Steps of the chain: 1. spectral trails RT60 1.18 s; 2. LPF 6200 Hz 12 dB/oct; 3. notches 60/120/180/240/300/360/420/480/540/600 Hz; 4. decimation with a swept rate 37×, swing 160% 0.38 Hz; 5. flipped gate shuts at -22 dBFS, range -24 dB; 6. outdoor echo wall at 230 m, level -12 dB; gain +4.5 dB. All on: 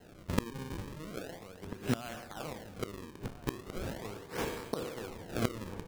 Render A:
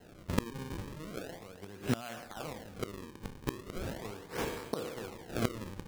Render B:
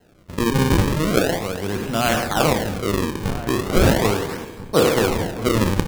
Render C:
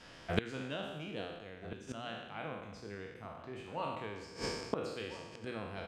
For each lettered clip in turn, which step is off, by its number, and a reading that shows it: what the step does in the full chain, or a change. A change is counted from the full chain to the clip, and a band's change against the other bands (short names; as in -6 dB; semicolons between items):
6, echo-to-direct -16.0 dB to none; 5, crest factor change -12.0 dB; 4, crest factor change +2.5 dB